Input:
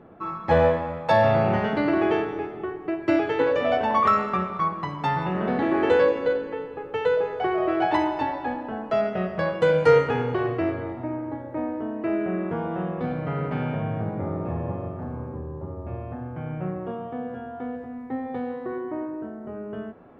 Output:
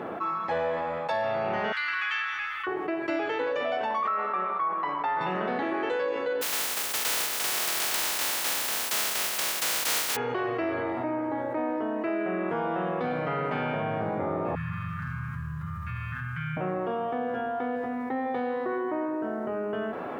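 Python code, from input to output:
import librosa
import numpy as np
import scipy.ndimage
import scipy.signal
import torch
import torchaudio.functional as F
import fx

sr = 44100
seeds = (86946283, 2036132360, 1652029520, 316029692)

y = fx.cheby2_bandstop(x, sr, low_hz=110.0, high_hz=730.0, order=4, stop_db=40, at=(1.72, 2.67))
y = fx.bandpass_edges(y, sr, low_hz=310.0, high_hz=2100.0, at=(4.07, 5.21))
y = fx.spec_flatten(y, sr, power=0.11, at=(6.41, 10.15), fade=0.02)
y = fx.ellip_bandstop(y, sr, low_hz=160.0, high_hz=1400.0, order=3, stop_db=40, at=(14.55, 16.57))
y = fx.rider(y, sr, range_db=5, speed_s=0.5)
y = fx.highpass(y, sr, hz=660.0, slope=6)
y = fx.env_flatten(y, sr, amount_pct=70)
y = y * 10.0 ** (-6.5 / 20.0)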